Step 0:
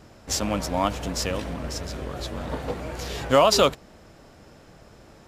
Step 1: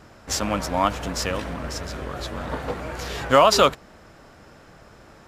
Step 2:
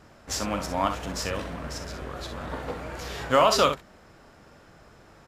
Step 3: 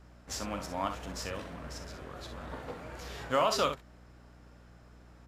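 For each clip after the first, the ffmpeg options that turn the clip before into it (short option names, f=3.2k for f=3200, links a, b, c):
-af "equalizer=f=1.4k:t=o:w=1.4:g=6"
-af "aecho=1:1:42|63:0.282|0.335,volume=-5dB"
-af "aeval=exprs='val(0)+0.00447*(sin(2*PI*60*n/s)+sin(2*PI*2*60*n/s)/2+sin(2*PI*3*60*n/s)/3+sin(2*PI*4*60*n/s)/4+sin(2*PI*5*60*n/s)/5)':c=same,volume=-8dB"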